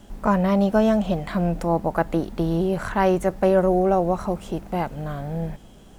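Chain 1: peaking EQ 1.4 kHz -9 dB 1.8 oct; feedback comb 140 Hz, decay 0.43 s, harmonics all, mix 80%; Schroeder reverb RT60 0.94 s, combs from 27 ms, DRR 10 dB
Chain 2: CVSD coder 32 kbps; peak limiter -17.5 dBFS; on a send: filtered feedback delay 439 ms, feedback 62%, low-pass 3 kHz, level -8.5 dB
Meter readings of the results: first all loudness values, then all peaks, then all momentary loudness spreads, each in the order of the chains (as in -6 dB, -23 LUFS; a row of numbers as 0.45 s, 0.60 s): -34.5 LUFS, -27.0 LUFS; -18.5 dBFS, -14.0 dBFS; 10 LU, 4 LU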